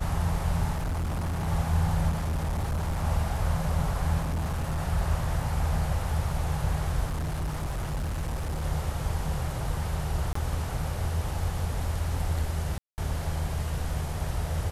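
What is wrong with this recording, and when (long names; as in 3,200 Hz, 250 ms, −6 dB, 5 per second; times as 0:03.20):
0:00.74–0:01.48: clipping −26.5 dBFS
0:02.09–0:03.05: clipping −25 dBFS
0:04.21–0:04.80: clipping −25.5 dBFS
0:07.06–0:08.65: clipping −27 dBFS
0:10.33–0:10.35: drop-out 24 ms
0:12.78–0:12.98: drop-out 199 ms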